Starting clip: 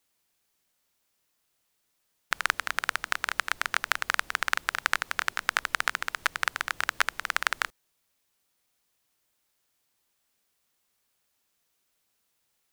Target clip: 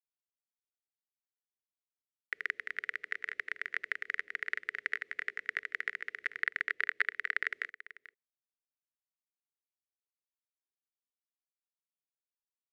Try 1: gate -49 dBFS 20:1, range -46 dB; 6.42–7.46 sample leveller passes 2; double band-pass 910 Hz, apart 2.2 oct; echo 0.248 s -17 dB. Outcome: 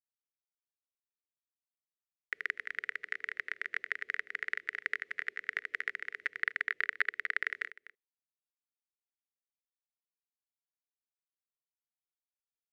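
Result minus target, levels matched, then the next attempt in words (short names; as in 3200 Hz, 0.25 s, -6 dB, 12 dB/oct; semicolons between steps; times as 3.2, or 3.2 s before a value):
echo 0.191 s early
gate -49 dBFS 20:1, range -46 dB; 6.42–7.46 sample leveller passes 2; double band-pass 910 Hz, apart 2.2 oct; echo 0.439 s -17 dB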